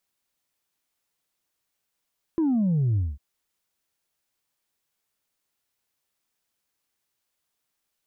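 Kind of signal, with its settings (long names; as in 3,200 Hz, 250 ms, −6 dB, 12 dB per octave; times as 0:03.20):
bass drop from 340 Hz, over 0.80 s, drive 1 dB, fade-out 0.21 s, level −20 dB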